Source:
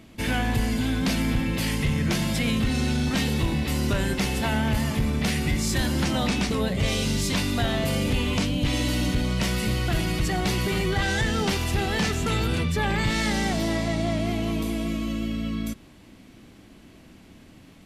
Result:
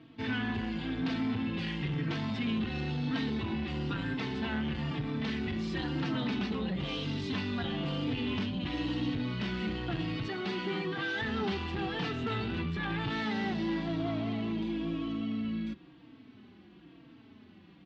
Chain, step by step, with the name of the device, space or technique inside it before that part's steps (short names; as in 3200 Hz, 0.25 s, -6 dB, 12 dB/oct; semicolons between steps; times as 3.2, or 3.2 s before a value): 10.27–11.22 HPF 210 Hz 12 dB/oct; barber-pole flanger into a guitar amplifier (endless flanger 3.9 ms -1 Hz; soft clip -23.5 dBFS, distortion -16 dB; speaker cabinet 110–3800 Hz, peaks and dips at 310 Hz +4 dB, 580 Hz -8 dB, 2200 Hz -4 dB); gain -2 dB